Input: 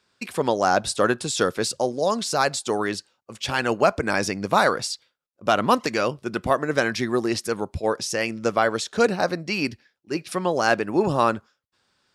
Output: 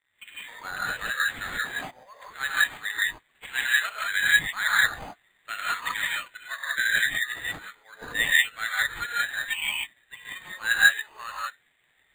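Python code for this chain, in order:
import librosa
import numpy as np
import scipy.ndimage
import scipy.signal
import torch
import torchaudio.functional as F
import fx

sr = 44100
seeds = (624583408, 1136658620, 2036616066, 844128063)

y = fx.lowpass(x, sr, hz=fx.line((1.98, 2700.0), (2.53, 5800.0)), slope=24, at=(1.98, 2.53), fade=0.02)
y = fx.dmg_crackle(y, sr, seeds[0], per_s=530.0, level_db=-36.0)
y = fx.highpass_res(y, sr, hz=1900.0, q=5.4)
y = fx.rev_gated(y, sr, seeds[1], gate_ms=210, shape='rising', drr_db=-5.0)
y = np.repeat(y[::8], 8)[:len(y)]
y = fx.spectral_expand(y, sr, expansion=1.5)
y = y * librosa.db_to_amplitude(-5.0)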